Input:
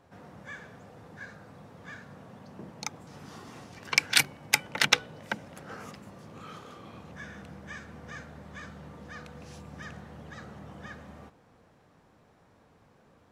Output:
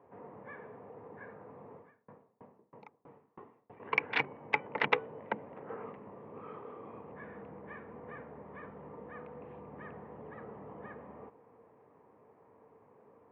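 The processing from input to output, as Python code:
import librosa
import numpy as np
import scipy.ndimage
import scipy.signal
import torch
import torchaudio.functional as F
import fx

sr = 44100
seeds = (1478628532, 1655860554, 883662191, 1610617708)

y = fx.wiener(x, sr, points=9)
y = fx.cabinet(y, sr, low_hz=140.0, low_slope=12, high_hz=2300.0, hz=(170.0, 440.0, 980.0, 1500.0), db=(-6, 10, 7, -8))
y = fx.tremolo_decay(y, sr, direction='decaying', hz=3.1, depth_db=34, at=(1.76, 3.8))
y = F.gain(torch.from_numpy(y), -2.0).numpy()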